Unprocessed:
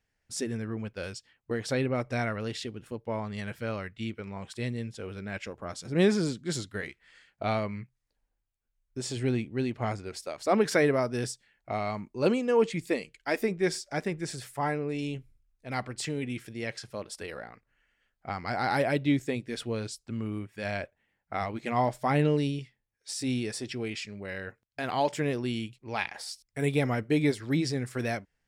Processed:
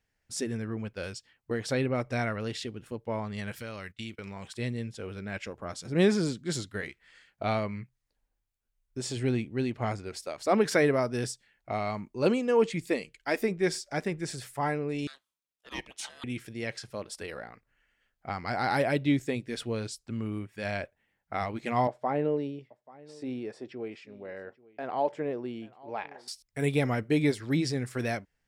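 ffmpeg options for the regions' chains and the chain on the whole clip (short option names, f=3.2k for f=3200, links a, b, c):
-filter_complex "[0:a]asettb=1/sr,asplit=3[a][b][c];[a]atrim=end=3.514[d];[b]atrim=start=3.51:end=4.48,asetpts=PTS-STARTPTS,afade=t=in:d=0.004:c=qsin,afade=t=out:st=0.966:d=0.004:c=qsin,acompressor=threshold=-37dB:ratio=4:attack=3.2:release=140:knee=1:detection=peak,highshelf=f=2.5k:g=10.5,agate=range=-17dB:threshold=-50dB:ratio=16:release=100:detection=peak[e];[c]atrim=start=4.476[f];[d][e]acrossfade=d=0.004:c1=hsin:c2=qsin[g];[g][f]acrossfade=d=0.004:c1=qsin:c2=hsin,asettb=1/sr,asplit=3[h][i][j];[h]atrim=end=15.074[k];[i]atrim=start=15.07:end=16.24,asetpts=PTS-STARTPTS,afade=t=in:d=0.004:c=qsin,afade=t=out:st=1.166:d=0.004:c=qsin,highpass=f=730:w=0.5412,highpass=f=730:w=1.3066,aeval=exprs='val(0)*sin(2*PI*1100*n/s)':c=same[l];[j]atrim=start=16.236[m];[k][l]acrossfade=d=0.004:c1=hsin:c2=qsin[n];[n][m]acrossfade=d=0.004:c1=qsin:c2=hsin,asettb=1/sr,asplit=3[o][p][q];[o]atrim=end=21.874[r];[p]atrim=start=21.87:end=26.28,asetpts=PTS-STARTPTS,afade=t=in:d=0.004:c=qsin,afade=t=out:st=4.406:d=0.004:c=qsin,bandpass=f=560:t=q:w=0.93,aecho=1:1:835:0.0794,atrim=end_sample=194481[s];[q]atrim=start=26.276[t];[r][s]acrossfade=d=0.004:c1=hsin:c2=qsin[u];[u][t]acrossfade=d=0.004:c1=qsin:c2=hsin"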